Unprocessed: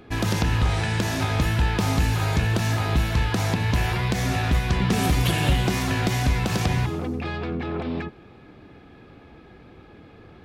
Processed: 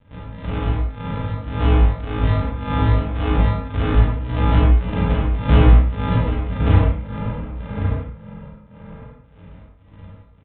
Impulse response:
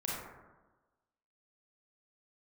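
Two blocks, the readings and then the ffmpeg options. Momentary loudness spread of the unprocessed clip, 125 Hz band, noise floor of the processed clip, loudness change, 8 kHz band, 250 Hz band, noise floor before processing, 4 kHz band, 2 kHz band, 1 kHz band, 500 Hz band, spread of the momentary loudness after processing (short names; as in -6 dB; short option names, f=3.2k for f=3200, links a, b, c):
7 LU, +4.0 dB, -49 dBFS, +4.0 dB, under -40 dB, +2.5 dB, -49 dBFS, -6.5 dB, -4.5 dB, +1.0 dB, +3.0 dB, 14 LU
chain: -filter_complex "[0:a]asubboost=boost=4:cutoff=160,acrossover=split=240[a][b];[b]alimiter=limit=-19.5dB:level=0:latency=1[c];[a][c]amix=inputs=2:normalize=0,flanger=delay=18.5:depth=2.5:speed=0.69,tremolo=f=1.8:d=0.9,aresample=11025,acrusher=samples=30:mix=1:aa=0.000001,aresample=44100,asplit=2[d][e];[e]adelay=33,volume=-11dB[f];[d][f]amix=inputs=2:normalize=0,asplit=2[g][h];[h]adelay=1108,volume=-7dB,highshelf=f=4k:g=-24.9[i];[g][i]amix=inputs=2:normalize=0[j];[1:a]atrim=start_sample=2205,afade=t=out:st=0.25:d=0.01,atrim=end_sample=11466[k];[j][k]afir=irnorm=-1:irlink=0,aresample=8000,aresample=44100,volume=-1.5dB"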